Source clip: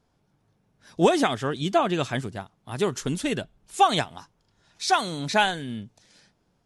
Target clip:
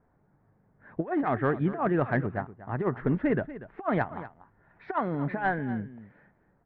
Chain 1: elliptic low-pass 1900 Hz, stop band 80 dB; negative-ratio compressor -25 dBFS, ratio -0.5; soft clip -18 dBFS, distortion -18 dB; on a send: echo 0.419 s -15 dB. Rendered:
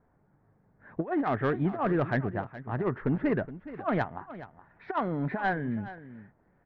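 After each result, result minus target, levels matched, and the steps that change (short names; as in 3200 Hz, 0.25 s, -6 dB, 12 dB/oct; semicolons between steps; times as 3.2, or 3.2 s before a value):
echo 0.179 s late; soft clip: distortion +10 dB
change: echo 0.24 s -15 dB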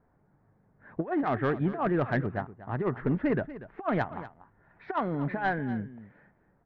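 soft clip: distortion +10 dB
change: soft clip -11.5 dBFS, distortion -28 dB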